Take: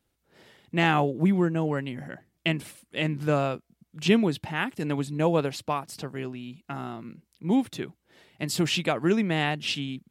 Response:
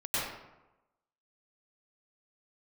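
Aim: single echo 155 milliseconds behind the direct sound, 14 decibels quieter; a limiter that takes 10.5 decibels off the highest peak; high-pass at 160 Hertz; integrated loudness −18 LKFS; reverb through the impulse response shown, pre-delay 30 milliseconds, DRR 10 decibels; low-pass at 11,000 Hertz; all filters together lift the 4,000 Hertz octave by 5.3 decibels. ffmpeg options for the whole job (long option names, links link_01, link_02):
-filter_complex "[0:a]highpass=160,lowpass=11000,equalizer=frequency=4000:width_type=o:gain=7.5,alimiter=limit=-16dB:level=0:latency=1,aecho=1:1:155:0.2,asplit=2[link_01][link_02];[1:a]atrim=start_sample=2205,adelay=30[link_03];[link_02][link_03]afir=irnorm=-1:irlink=0,volume=-18dB[link_04];[link_01][link_04]amix=inputs=2:normalize=0,volume=11dB"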